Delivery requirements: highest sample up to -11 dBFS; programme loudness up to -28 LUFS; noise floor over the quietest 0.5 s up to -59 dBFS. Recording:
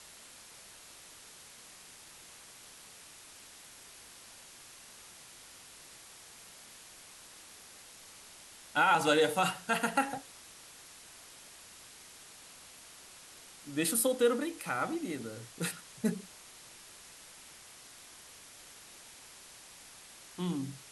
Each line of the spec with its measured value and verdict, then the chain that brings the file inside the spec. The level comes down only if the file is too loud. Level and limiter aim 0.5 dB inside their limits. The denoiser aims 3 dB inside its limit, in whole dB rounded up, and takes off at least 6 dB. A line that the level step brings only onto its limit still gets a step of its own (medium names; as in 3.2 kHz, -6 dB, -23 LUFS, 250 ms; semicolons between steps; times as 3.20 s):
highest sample -14.0 dBFS: pass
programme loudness -31.5 LUFS: pass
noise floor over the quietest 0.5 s -53 dBFS: fail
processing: noise reduction 9 dB, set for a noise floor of -53 dBFS